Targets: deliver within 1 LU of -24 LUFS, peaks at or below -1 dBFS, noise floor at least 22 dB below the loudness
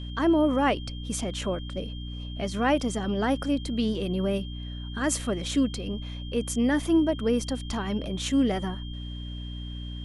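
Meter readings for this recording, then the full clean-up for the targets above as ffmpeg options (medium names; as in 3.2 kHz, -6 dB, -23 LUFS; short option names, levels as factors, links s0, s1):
hum 60 Hz; highest harmonic 300 Hz; hum level -33 dBFS; steady tone 3.2 kHz; tone level -44 dBFS; loudness -28.0 LUFS; peak level -12.5 dBFS; loudness target -24.0 LUFS
-> -af "bandreject=f=60:t=h:w=6,bandreject=f=120:t=h:w=6,bandreject=f=180:t=h:w=6,bandreject=f=240:t=h:w=6,bandreject=f=300:t=h:w=6"
-af "bandreject=f=3200:w=30"
-af "volume=1.58"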